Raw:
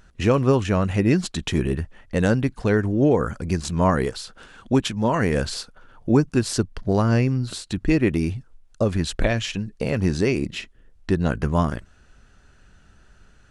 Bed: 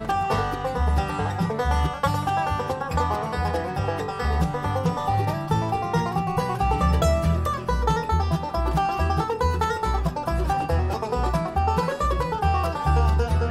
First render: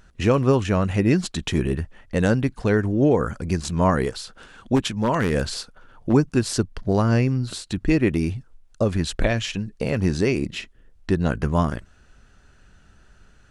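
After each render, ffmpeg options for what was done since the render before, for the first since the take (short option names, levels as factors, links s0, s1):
-filter_complex "[0:a]asplit=3[s0][s1][s2];[s0]afade=t=out:st=4.75:d=0.02[s3];[s1]aeval=exprs='0.237*(abs(mod(val(0)/0.237+3,4)-2)-1)':c=same,afade=t=in:st=4.75:d=0.02,afade=t=out:st=6.12:d=0.02[s4];[s2]afade=t=in:st=6.12:d=0.02[s5];[s3][s4][s5]amix=inputs=3:normalize=0"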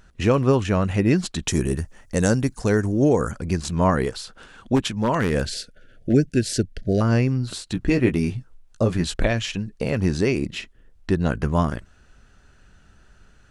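-filter_complex "[0:a]asettb=1/sr,asplit=3[s0][s1][s2];[s0]atrim=end=1.484[s3];[s1]atrim=start=1.48:end=3.32,asetpts=PTS-STARTPTS,afade=t=in:d=0.004:c=qsin,afade=t=out:st=1.836:d=0.004:c=qsin,highshelf=f=4600:t=q:w=1.5:g=10[s4];[s2]atrim=start=3.316[s5];[s3][s4]acrossfade=d=0.004:c1=hsin:c2=qsin[s6];[s6][s5]acrossfade=d=0.004:c1=qsin:c2=hsin,asettb=1/sr,asplit=3[s7][s8][s9];[s7]atrim=end=5.454[s10];[s8]atrim=start=5.45:end=7.01,asetpts=PTS-STARTPTS,afade=t=in:d=0.004:c=qsin,afade=t=out:st=1.556:d=0.004:c=qsin,asuperstop=centerf=1000:order=8:qfactor=1.2[s11];[s9]atrim=start=7.006[s12];[s10][s11]acrossfade=d=0.004:c1=hsin:c2=qsin[s13];[s13][s12]acrossfade=d=0.004:c1=qsin:c2=hsin,asettb=1/sr,asplit=3[s14][s15][s16];[s14]atrim=end=7.734[s17];[s15]atrim=start=7.73:end=9.14,asetpts=PTS-STARTPTS,afade=t=in:d=0.004:c=qsin,afade=t=out:st=1.406:d=0.004:c=qsin,asplit=2[s18][s19];[s19]adelay=17,volume=0.473[s20];[s18][s20]amix=inputs=2:normalize=0,atrim=end_sample=62181[s21];[s16]atrim=start=9.136[s22];[s17][s21]acrossfade=d=0.004:c1=hsin:c2=qsin[s23];[s23][s22]acrossfade=d=0.004:c1=qsin:c2=hsin"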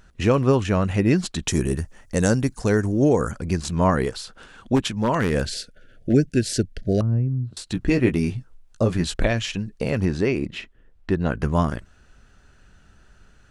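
-filter_complex "[0:a]asettb=1/sr,asplit=3[s0][s1][s2];[s0]atrim=end=7.014[s3];[s1]atrim=start=7.01:end=7.57,asetpts=PTS-STARTPTS,afade=t=in:d=0.004:c=qsin,afade=t=out:st=0.556:d=0.004:c=qsin,bandpass=f=110:t=q:w=1.2[s4];[s2]atrim=start=7.566[s5];[s3][s4]acrossfade=d=0.004:c1=hsin:c2=qsin[s6];[s6][s5]acrossfade=d=0.004:c1=qsin:c2=hsin,asettb=1/sr,asplit=3[s7][s8][s9];[s7]atrim=end=10.054[s10];[s8]atrim=start=10.05:end=11.4,asetpts=PTS-STARTPTS,afade=t=in:d=0.004:c=qsin,afade=t=out:st=1.346:d=0.004:c=qsin,bass=f=250:g=-2,treble=f=4000:g=-9[s11];[s9]atrim=start=11.396[s12];[s10][s11]acrossfade=d=0.004:c1=hsin:c2=qsin[s13];[s13][s12]acrossfade=d=0.004:c1=qsin:c2=hsin"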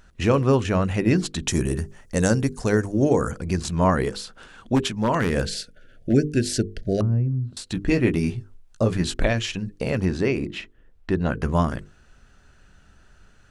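-af "bandreject=f=50:t=h:w=6,bandreject=f=100:t=h:w=6,bandreject=f=150:t=h:w=6,bandreject=f=200:t=h:w=6,bandreject=f=250:t=h:w=6,bandreject=f=300:t=h:w=6,bandreject=f=350:t=h:w=6,bandreject=f=400:t=h:w=6,bandreject=f=450:t=h:w=6,bandreject=f=500:t=h:w=6"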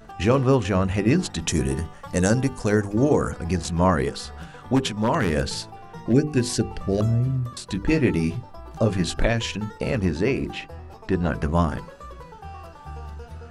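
-filter_complex "[1:a]volume=0.141[s0];[0:a][s0]amix=inputs=2:normalize=0"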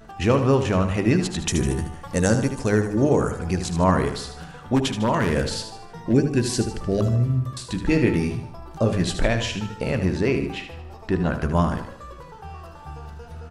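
-af "aecho=1:1:76|152|228|304|380:0.355|0.16|0.0718|0.0323|0.0145"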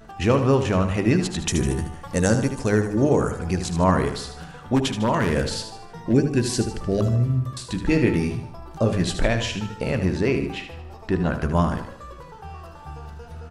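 -af anull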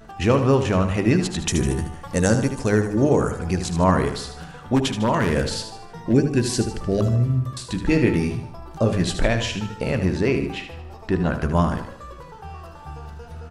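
-af "volume=1.12"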